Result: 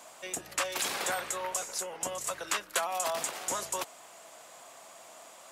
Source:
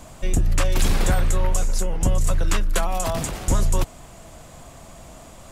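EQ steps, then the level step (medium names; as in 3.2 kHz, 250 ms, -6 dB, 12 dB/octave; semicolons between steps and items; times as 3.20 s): high-pass 620 Hz 12 dB/octave; -3.5 dB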